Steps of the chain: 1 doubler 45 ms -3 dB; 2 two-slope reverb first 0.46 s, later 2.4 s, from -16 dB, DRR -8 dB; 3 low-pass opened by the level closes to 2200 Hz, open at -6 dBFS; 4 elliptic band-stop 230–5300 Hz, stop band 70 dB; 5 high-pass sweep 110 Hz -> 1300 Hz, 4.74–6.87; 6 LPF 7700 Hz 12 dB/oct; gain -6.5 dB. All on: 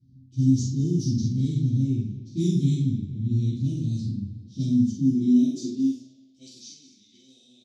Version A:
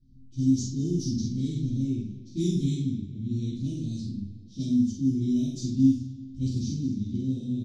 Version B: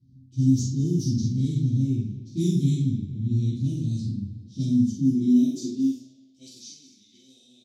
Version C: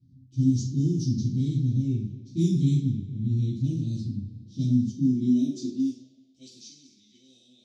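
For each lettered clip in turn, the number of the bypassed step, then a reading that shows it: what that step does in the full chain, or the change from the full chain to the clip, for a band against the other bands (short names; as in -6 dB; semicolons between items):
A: 5, 125 Hz band -3.5 dB; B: 6, momentary loudness spread change +3 LU; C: 1, loudness change -2.0 LU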